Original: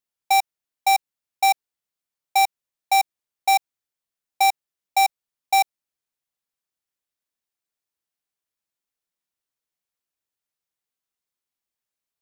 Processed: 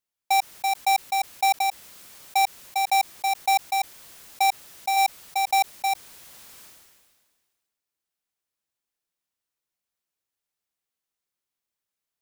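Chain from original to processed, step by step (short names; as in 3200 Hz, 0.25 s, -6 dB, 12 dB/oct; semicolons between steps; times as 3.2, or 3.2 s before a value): reverse delay 0.521 s, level -7 dB; limiter -18.5 dBFS, peak gain reduction 5.5 dB; sustainer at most 35 dB/s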